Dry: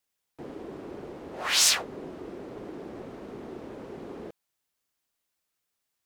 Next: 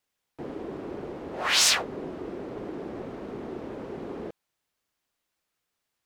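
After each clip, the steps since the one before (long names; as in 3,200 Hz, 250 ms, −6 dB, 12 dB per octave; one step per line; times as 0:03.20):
high-shelf EQ 5,600 Hz −8 dB
level +4 dB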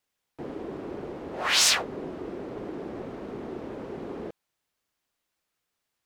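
no processing that can be heard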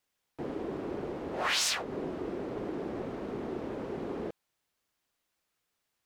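downward compressor 5 to 1, threshold −27 dBFS, peak gain reduction 9.5 dB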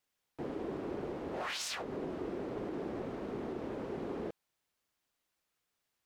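brickwall limiter −27 dBFS, peak gain reduction 10.5 dB
level −2.5 dB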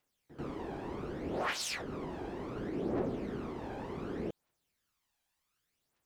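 echo ahead of the sound 90 ms −15.5 dB
phase shifter 0.67 Hz, delay 1.3 ms, feedback 56%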